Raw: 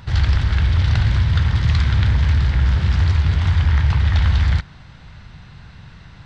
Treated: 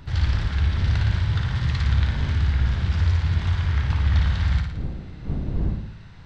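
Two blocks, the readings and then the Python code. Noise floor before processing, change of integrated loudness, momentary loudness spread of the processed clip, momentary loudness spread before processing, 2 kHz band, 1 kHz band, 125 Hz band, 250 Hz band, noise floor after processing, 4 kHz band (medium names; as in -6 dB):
-42 dBFS, -6.0 dB, 9 LU, 1 LU, -5.0 dB, -5.0 dB, -5.0 dB, -3.0 dB, -41 dBFS, -5.5 dB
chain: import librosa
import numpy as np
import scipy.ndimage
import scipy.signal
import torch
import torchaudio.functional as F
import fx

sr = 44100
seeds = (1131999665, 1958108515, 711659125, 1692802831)

y = fx.dmg_wind(x, sr, seeds[0], corner_hz=120.0, level_db=-27.0)
y = fx.room_flutter(y, sr, wall_m=9.8, rt60_s=0.74)
y = y * 10.0 ** (-7.0 / 20.0)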